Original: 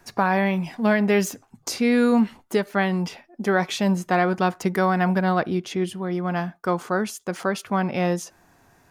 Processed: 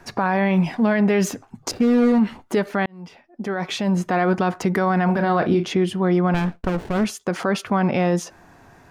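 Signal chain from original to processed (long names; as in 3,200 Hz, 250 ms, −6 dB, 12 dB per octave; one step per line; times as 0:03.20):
0:01.71–0:02.19: running median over 41 samples
low-pass filter 3,200 Hz 6 dB per octave
brickwall limiter −19.5 dBFS, peak gain reduction 10 dB
0:02.86–0:04.22: fade in
0:05.05–0:05.71: double-tracking delay 35 ms −7.5 dB
0:06.34–0:07.05: windowed peak hold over 33 samples
level +8.5 dB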